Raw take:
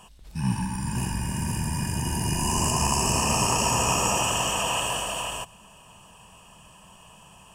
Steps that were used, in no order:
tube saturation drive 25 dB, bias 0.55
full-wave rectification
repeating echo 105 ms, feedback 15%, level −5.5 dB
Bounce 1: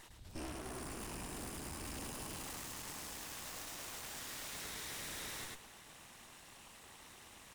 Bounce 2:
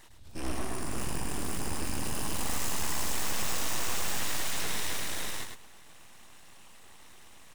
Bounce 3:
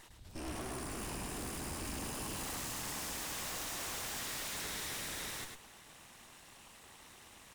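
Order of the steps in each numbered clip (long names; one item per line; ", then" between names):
full-wave rectification, then repeating echo, then tube saturation
tube saturation, then full-wave rectification, then repeating echo
full-wave rectification, then tube saturation, then repeating echo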